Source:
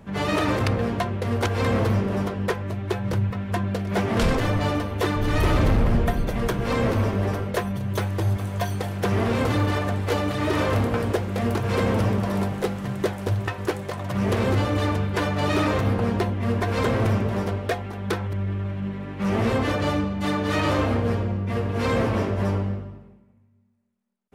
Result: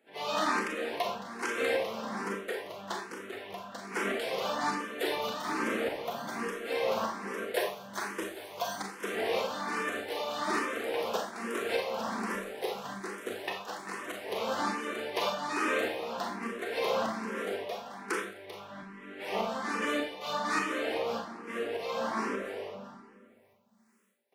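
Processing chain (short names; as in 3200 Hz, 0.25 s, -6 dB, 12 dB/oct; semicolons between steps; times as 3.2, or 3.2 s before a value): HPF 210 Hz 24 dB/oct; low shelf 390 Hz -10 dB; notch 570 Hz, Q 19; reverse; upward compressor, threshold -46 dBFS; reverse; tremolo saw up 1.7 Hz, depth 75%; on a send: echo 0.392 s -13 dB; on the sum: Schroeder reverb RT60 0.48 s, combs from 28 ms, DRR 0 dB; endless phaser +1.2 Hz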